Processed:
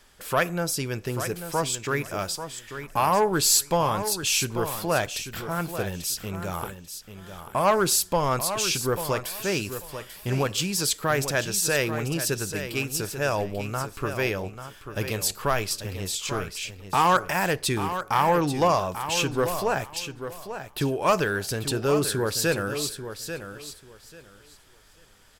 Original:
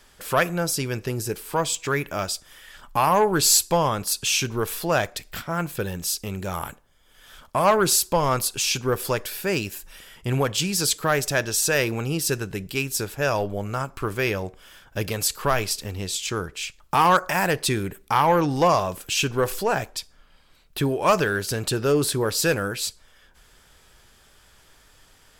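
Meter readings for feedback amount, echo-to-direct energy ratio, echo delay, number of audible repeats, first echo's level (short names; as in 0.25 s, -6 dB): 20%, -10.0 dB, 0.84 s, 2, -10.0 dB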